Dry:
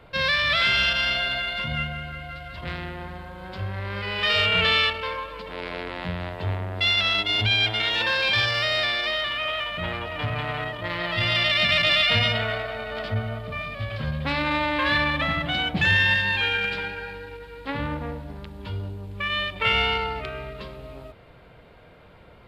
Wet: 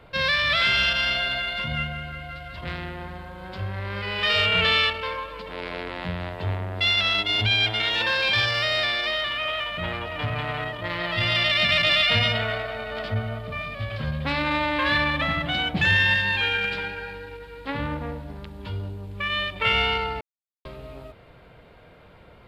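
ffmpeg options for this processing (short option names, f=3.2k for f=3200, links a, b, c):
-filter_complex "[0:a]asplit=3[a][b][c];[a]atrim=end=20.21,asetpts=PTS-STARTPTS,afade=t=out:st=20.206:d=0.004:c=hsin[d];[b]atrim=start=20.21:end=20.65,asetpts=PTS-STARTPTS,volume=0[e];[c]atrim=start=20.65,asetpts=PTS-STARTPTS,afade=t=in:d=0.004:c=hsin[f];[d][e][f]concat=n=3:v=0:a=1"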